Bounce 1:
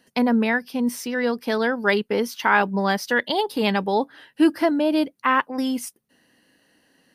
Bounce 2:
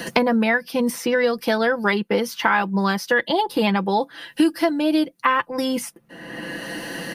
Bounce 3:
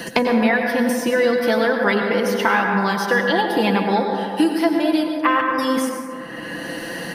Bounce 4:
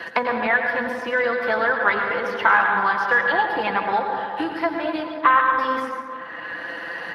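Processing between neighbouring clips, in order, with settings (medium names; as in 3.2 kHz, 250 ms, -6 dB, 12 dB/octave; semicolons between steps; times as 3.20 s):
comb 5.9 ms, depth 59%; three bands compressed up and down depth 100%
reverberation RT60 2.3 s, pre-delay 82 ms, DRR 2 dB
band-pass filter 1.3 kHz, Q 1.4; trim +4 dB; Speex 24 kbps 32 kHz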